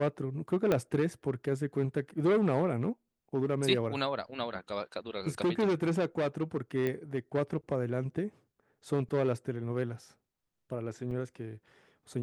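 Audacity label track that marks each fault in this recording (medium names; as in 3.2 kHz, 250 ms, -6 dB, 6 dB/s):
0.720000	0.720000	pop -15 dBFS
6.870000	6.870000	pop -20 dBFS
11.110000	11.110000	dropout 3.8 ms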